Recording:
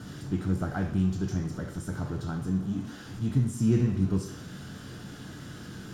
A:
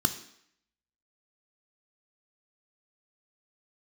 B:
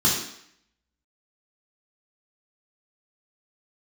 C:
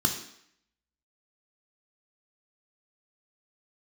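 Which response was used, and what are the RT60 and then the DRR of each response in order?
C; 0.70, 0.70, 0.70 s; 7.5, -7.0, 2.5 dB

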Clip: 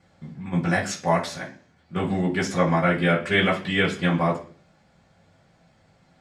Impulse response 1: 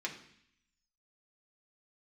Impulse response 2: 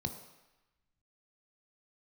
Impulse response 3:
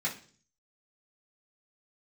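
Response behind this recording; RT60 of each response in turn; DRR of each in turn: 3; 0.65, 1.0, 0.45 s; -1.5, 6.0, -7.5 dB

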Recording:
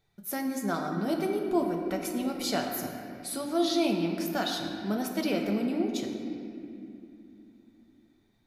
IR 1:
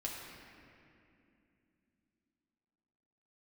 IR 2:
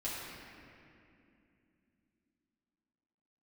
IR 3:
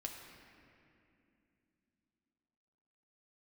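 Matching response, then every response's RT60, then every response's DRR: 3; 2.7, 2.7, 2.7 s; -3.0, -8.5, 1.0 dB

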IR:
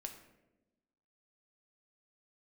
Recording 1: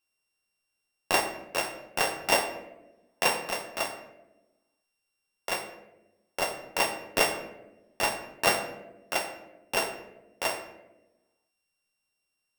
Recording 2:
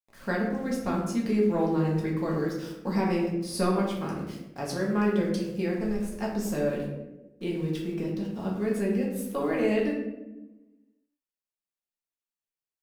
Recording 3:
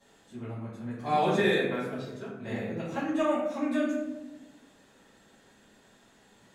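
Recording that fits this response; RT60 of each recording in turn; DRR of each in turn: 1; 1.0, 1.0, 1.0 s; 4.0, -4.0, -12.5 dB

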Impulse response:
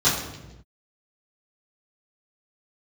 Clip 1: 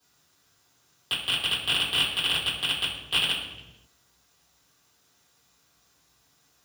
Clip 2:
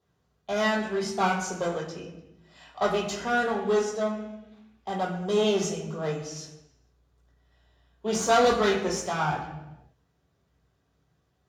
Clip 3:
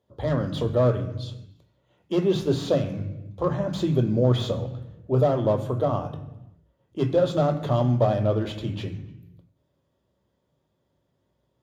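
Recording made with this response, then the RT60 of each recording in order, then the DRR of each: 1; not exponential, not exponential, not exponential; -12.5, -2.5, 5.0 dB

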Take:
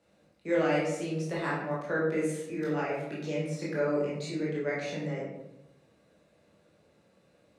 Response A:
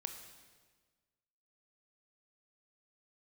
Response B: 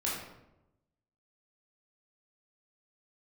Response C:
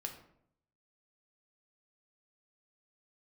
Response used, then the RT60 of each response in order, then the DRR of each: B; 1.5, 0.90, 0.70 s; 5.5, -6.5, 2.5 dB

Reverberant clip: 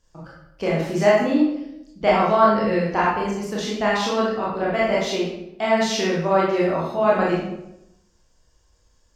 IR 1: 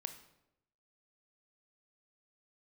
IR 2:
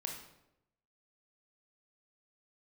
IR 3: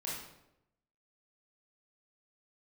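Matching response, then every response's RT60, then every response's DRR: 3; 0.85, 0.85, 0.85 s; 8.0, 0.5, -6.5 dB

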